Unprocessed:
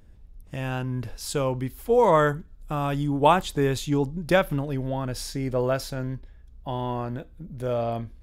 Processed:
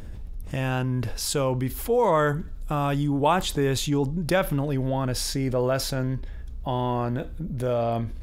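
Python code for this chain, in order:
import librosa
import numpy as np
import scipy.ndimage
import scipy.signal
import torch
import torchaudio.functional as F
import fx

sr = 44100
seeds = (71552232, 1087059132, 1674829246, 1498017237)

y = fx.env_flatten(x, sr, amount_pct=50)
y = y * librosa.db_to_amplitude(-4.0)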